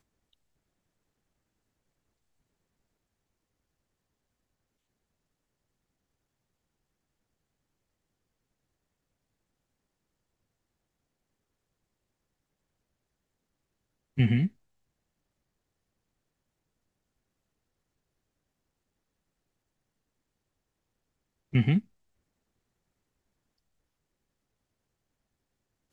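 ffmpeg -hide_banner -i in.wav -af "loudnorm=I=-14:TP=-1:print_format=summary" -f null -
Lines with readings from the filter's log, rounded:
Input Integrated:    -27.4 LUFS
Input True Peak:     -12.3 dBTP
Input LRA:             0.3 LU
Input Threshold:     -38.0 LUFS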